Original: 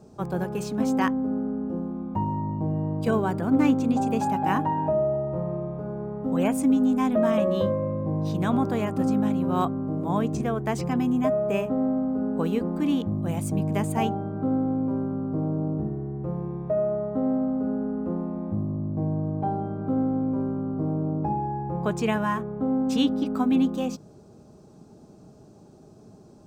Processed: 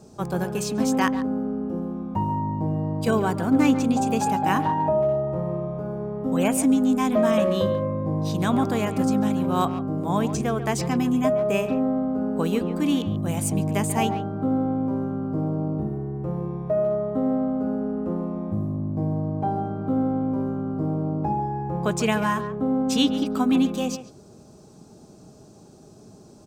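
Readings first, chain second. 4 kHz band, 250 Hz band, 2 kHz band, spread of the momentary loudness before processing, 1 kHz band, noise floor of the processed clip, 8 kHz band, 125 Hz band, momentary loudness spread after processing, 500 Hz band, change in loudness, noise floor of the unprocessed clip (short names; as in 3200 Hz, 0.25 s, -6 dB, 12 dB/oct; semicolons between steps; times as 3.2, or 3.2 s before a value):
+6.5 dB, +1.5 dB, +4.0 dB, 8 LU, +2.5 dB, -49 dBFS, +10.0 dB, +1.5 dB, 7 LU, +2.0 dB, +2.0 dB, -50 dBFS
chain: bell 8500 Hz +8.5 dB 2.7 oct; speakerphone echo 0.14 s, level -11 dB; gain +1.5 dB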